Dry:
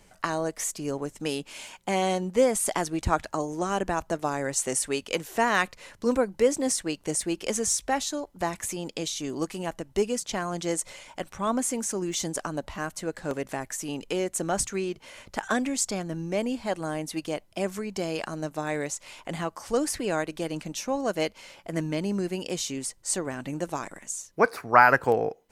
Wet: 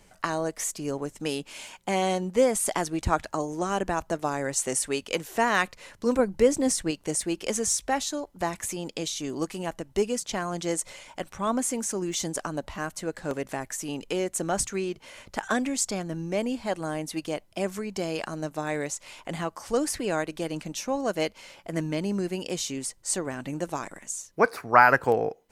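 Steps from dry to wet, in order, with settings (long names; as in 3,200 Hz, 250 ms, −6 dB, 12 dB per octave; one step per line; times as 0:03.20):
0:06.19–0:06.91: low-shelf EQ 180 Hz +10.5 dB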